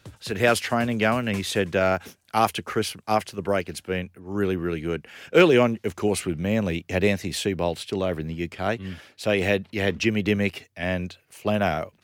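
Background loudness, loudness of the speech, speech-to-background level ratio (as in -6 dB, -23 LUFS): -44.5 LUFS, -24.5 LUFS, 20.0 dB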